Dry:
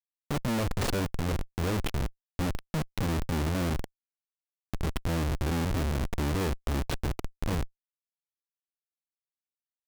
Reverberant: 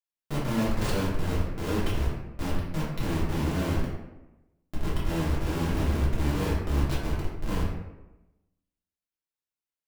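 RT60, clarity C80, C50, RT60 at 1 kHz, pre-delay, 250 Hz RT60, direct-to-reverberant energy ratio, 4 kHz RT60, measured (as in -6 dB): 1.0 s, 4.5 dB, 1.5 dB, 0.95 s, 3 ms, 1.1 s, -7.5 dB, 0.55 s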